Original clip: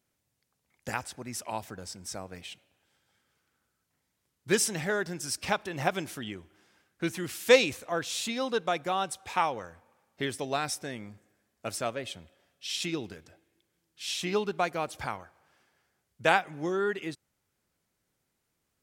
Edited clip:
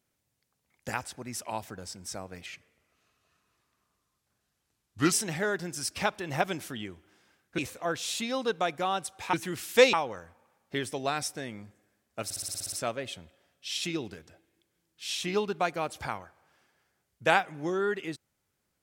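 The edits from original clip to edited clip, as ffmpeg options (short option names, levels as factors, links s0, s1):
-filter_complex "[0:a]asplit=14[s0][s1][s2][s3][s4][s5][s6][s7][s8][s9][s10][s11][s12][s13];[s0]atrim=end=2.464[s14];[s1]atrim=start=2.46:end=4.59,asetpts=PTS-STARTPTS,asetrate=35280,aresample=44100,atrim=end_sample=117416,asetpts=PTS-STARTPTS[s15];[s2]atrim=start=4.586:end=7.052[s16];[s3]atrim=start=7.648:end=9.402[s17];[s4]atrim=start=7.048:end=7.652[s18];[s5]atrim=start=9.398:end=11.772[s19];[s6]atrim=start=11.708:end=11.772[s20];[s7]atrim=start=11.708:end=11.772[s21];[s8]atrim=start=11.708:end=11.772[s22];[s9]atrim=start=11.708:end=11.772[s23];[s10]atrim=start=11.708:end=11.772[s24];[s11]atrim=start=11.708:end=11.772[s25];[s12]atrim=start=11.708:end=11.772[s26];[s13]atrim=start=11.708[s27];[s14][s15]acrossfade=d=0.004:c1=hsin:c2=hsin[s28];[s28][s16]acrossfade=d=0.004:c1=hsin:c2=hsin[s29];[s29][s17]acrossfade=d=0.004:c1=hsin:c2=hsin[s30];[s30][s18]acrossfade=d=0.004:c1=hsin:c2=hsin[s31];[s31][s19]acrossfade=d=0.004:c1=hsin:c2=hsin[s32];[s32][s20]acrossfade=d=0.004:c1=hsin:c2=hsin[s33];[s33][s21]acrossfade=d=0.004:c1=hsin:c2=hsin[s34];[s34][s22]acrossfade=d=0.004:c1=hsin:c2=hsin[s35];[s35][s23]acrossfade=d=0.004:c1=hsin:c2=hsin[s36];[s36][s24]acrossfade=d=0.004:c1=hsin:c2=hsin[s37];[s37][s25]acrossfade=d=0.004:c1=hsin:c2=hsin[s38];[s38][s26]acrossfade=d=0.004:c1=hsin:c2=hsin[s39];[s39][s27]acrossfade=d=0.004:c1=hsin:c2=hsin"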